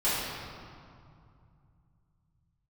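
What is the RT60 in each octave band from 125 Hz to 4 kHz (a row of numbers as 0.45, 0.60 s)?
4.4, 3.3, 2.3, 2.5, 1.8, 1.4 s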